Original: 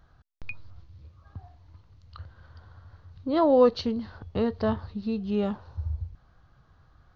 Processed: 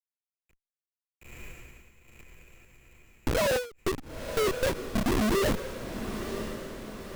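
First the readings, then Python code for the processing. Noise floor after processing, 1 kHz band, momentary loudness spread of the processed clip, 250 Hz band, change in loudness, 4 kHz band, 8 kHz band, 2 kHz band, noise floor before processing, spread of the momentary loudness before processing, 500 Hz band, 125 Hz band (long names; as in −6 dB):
below −85 dBFS, −2.5 dB, 19 LU, −4.0 dB, −3.5 dB, +5.5 dB, can't be measured, +9.5 dB, −61 dBFS, 21 LU, −3.5 dB, −0.5 dB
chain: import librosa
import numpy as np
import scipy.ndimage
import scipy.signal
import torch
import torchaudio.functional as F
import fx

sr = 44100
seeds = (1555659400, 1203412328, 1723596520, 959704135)

p1 = fx.sine_speech(x, sr)
p2 = fx.hum_notches(p1, sr, base_hz=60, count=5)
p3 = fx.rider(p2, sr, range_db=5, speed_s=2.0)
p4 = p2 + (p3 * 10.0 ** (0.5 / 20.0))
p5 = fx.chorus_voices(p4, sr, voices=6, hz=0.77, base_ms=24, depth_ms=3.1, mix_pct=35)
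p6 = fx.schmitt(p5, sr, flips_db=-28.0)
p7 = p6 + fx.echo_diffused(p6, sr, ms=977, feedback_pct=51, wet_db=-9.0, dry=0)
p8 = fx.end_taper(p7, sr, db_per_s=160.0)
y = p8 * 10.0 ** (3.0 / 20.0)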